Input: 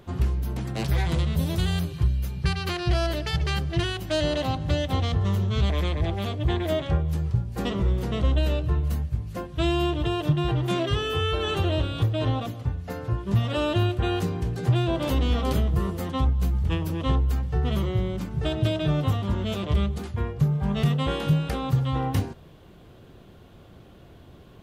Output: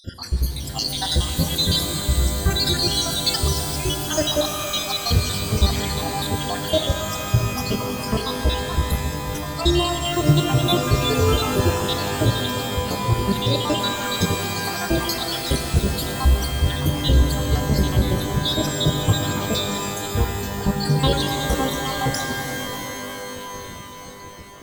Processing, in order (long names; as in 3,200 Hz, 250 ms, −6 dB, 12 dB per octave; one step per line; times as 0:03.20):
time-frequency cells dropped at random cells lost 78%
high shelf with overshoot 3,200 Hz +8.5 dB, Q 3
in parallel at −3.5 dB: soft clipping −27 dBFS, distortion −8 dB
on the sum: reverb with rising layers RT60 3.7 s, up +12 semitones, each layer −2 dB, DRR 4.5 dB
level +4.5 dB